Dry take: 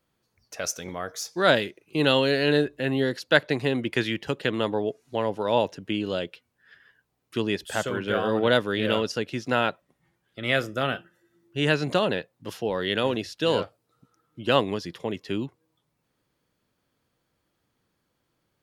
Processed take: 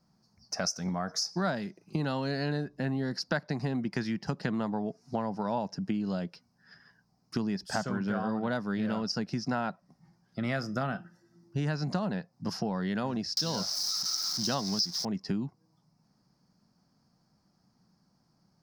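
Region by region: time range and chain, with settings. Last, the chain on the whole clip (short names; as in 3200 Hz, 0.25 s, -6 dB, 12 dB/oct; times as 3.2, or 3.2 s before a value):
13.37–15.05 switching spikes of -21.5 dBFS + band shelf 4500 Hz +11 dB 1.1 oct
whole clip: EQ curve 100 Hz 0 dB, 190 Hz +13 dB, 310 Hz -1 dB, 510 Hz -6 dB, 730 Hz +5 dB, 3400 Hz -14 dB, 5100 Hz +12 dB, 7200 Hz -4 dB, 12000 Hz -10 dB; compressor 6:1, threshold -31 dBFS; dynamic EQ 1600 Hz, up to +4 dB, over -53 dBFS, Q 1.2; gain +2 dB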